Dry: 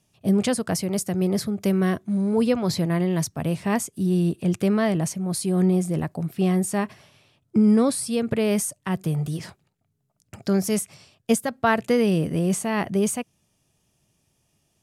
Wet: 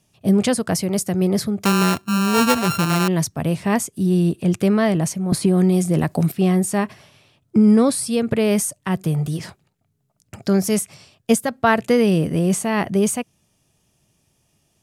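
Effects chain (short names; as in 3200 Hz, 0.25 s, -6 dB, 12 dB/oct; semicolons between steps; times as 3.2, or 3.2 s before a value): 1.65–3.08 sample sorter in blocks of 32 samples; 5.32–6.32 three-band squash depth 100%; gain +4 dB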